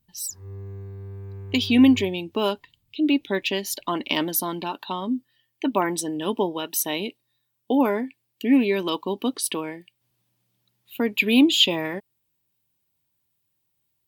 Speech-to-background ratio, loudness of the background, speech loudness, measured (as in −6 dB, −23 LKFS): 15.5 dB, −39.0 LKFS, −23.5 LKFS